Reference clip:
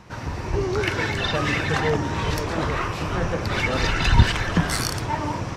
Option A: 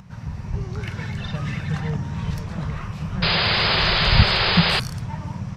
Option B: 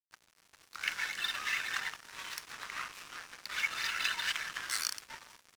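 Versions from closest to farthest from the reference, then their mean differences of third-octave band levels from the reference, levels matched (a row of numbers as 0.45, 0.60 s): A, B; 8.5, 14.0 dB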